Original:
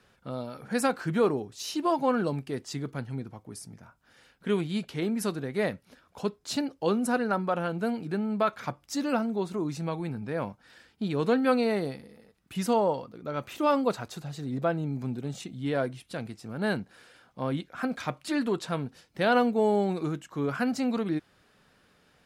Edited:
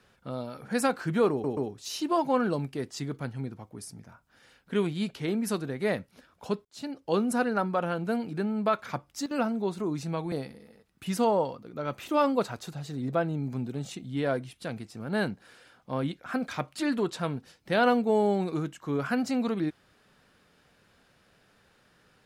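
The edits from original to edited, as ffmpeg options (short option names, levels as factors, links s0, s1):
-filter_complex "[0:a]asplit=7[s0][s1][s2][s3][s4][s5][s6];[s0]atrim=end=1.442[s7];[s1]atrim=start=1.308:end=1.442[s8];[s2]atrim=start=1.308:end=6.39,asetpts=PTS-STARTPTS,afade=t=out:st=5.078:d=0.004:c=hsin[s9];[s3]atrim=start=6.39:end=9,asetpts=PTS-STARTPTS,afade=t=in:d=0.49,afade=t=out:st=2.3:d=0.31:c=log:silence=0.199526[s10];[s4]atrim=start=9:end=9.05,asetpts=PTS-STARTPTS,volume=0.2[s11];[s5]atrim=start=9.05:end=10.062,asetpts=PTS-STARTPTS,afade=t=in:d=0.31:c=log:silence=0.199526[s12];[s6]atrim=start=11.808[s13];[s7][s8]acrossfade=d=0.004:c1=hsin:c2=hsin[s14];[s9][s10][s11][s12]concat=n=4:v=0:a=1[s15];[s14][s15]acrossfade=d=0.004:c1=hsin:c2=hsin[s16];[s16][s13]acrossfade=d=0.004:c1=hsin:c2=hsin"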